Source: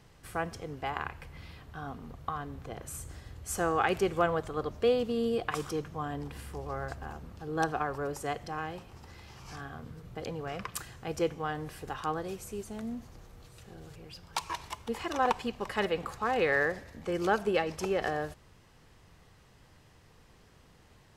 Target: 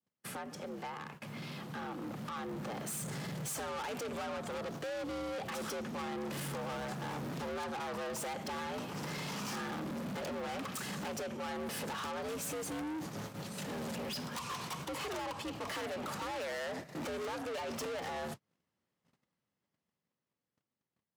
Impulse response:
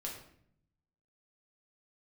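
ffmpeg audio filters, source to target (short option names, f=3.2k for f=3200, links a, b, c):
-filter_complex "[0:a]asplit=2[a][b];[b]alimiter=limit=-23.5dB:level=0:latency=1:release=92,volume=-1dB[c];[a][c]amix=inputs=2:normalize=0,acompressor=threshold=-37dB:ratio=8,afreqshift=73,acrossover=split=130[d][e];[d]aeval=exprs='(mod(841*val(0)+1,2)-1)/841':c=same[f];[f][e]amix=inputs=2:normalize=0,adynamicequalizer=threshold=0.00126:dfrequency=1900:dqfactor=3.2:tfrequency=1900:tqfactor=3.2:attack=5:release=100:ratio=0.375:range=2:mode=cutabove:tftype=bell,agate=range=-43dB:threshold=-48dB:ratio=16:detection=peak,dynaudnorm=f=770:g=7:m=11dB,asoftclip=type=tanh:threshold=-39.5dB,highpass=60,volume=2dB"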